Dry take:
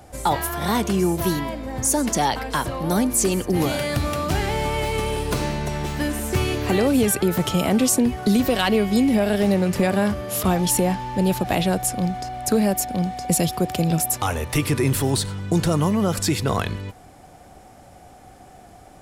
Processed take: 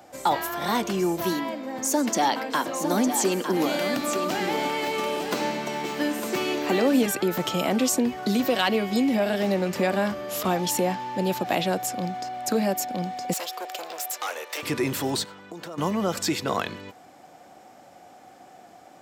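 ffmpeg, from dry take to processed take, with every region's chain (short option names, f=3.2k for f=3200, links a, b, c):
-filter_complex "[0:a]asettb=1/sr,asplit=3[a][b][c];[a]atrim=end=1.324[d];[b]atrim=start=1.32:end=7.06,asetpts=PTS-STARTPTS,afade=t=in:d=0.004:c=qsin,afade=t=out:st=5.736:d=0.004:c=qsin,lowshelf=f=150:t=q:w=1.5:g=-10.5,aecho=1:1:906:0.398,atrim=end_sample=253134[e];[c]atrim=start=7.056[f];[d][e]acrossfade=d=0.004:c1=hsin:c2=qsin[g];[g][f]acrossfade=d=0.004:c1=qsin:c2=hsin,asettb=1/sr,asplit=3[h][i][j];[h]atrim=end=13.334[k];[i]atrim=start=13.33:end=14.63,asetpts=PTS-STARTPTS,afade=t=in:d=0.004:c=qsin,afade=t=out:st=1.296:d=0.004:c=qsin,equalizer=f=830:w=2.1:g=-5,asoftclip=type=hard:threshold=-21dB,highpass=f=450:w=0.5412,highpass=f=450:w=1.3066[l];[j]atrim=start=14.626[m];[k][l]acrossfade=d=0.004:c1=hsin:c2=qsin[n];[n][m]acrossfade=d=0.004:c1=qsin:c2=hsin,asettb=1/sr,asplit=3[o][p][q];[o]atrim=end=15.244[r];[p]atrim=start=15.24:end=15.78,asetpts=PTS-STARTPTS,afade=t=in:d=0.004:c=qsin,afade=t=out:st=0.536:d=0.004:c=qsin,highpass=f=500:p=1,equalizer=f=7.4k:t=o:w=3:g=-8,acompressor=threshold=-30dB:ratio=6:attack=3.2:release=140:knee=1:detection=peak[s];[q]atrim=start=15.776[t];[r][s]acrossfade=d=0.004:c1=hsin:c2=qsin[u];[u][t]acrossfade=d=0.004:c1=qsin:c2=hsin,highpass=250,equalizer=f=10k:w=3:g=-13,bandreject=f=420:w=12,volume=-1.5dB"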